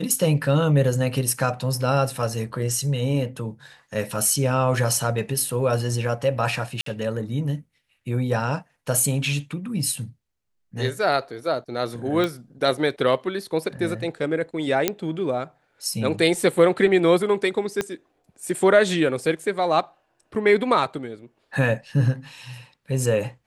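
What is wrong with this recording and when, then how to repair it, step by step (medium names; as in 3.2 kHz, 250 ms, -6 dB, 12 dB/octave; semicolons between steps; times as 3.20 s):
6.81–6.86 s: dropout 53 ms
12.24 s: pop -12 dBFS
14.88 s: pop -4 dBFS
17.81 s: pop -10 dBFS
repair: de-click; interpolate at 6.81 s, 53 ms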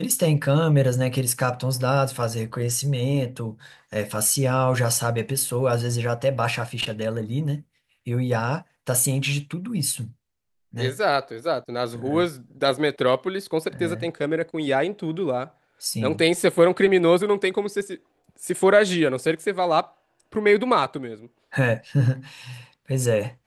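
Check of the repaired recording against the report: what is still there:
17.81 s: pop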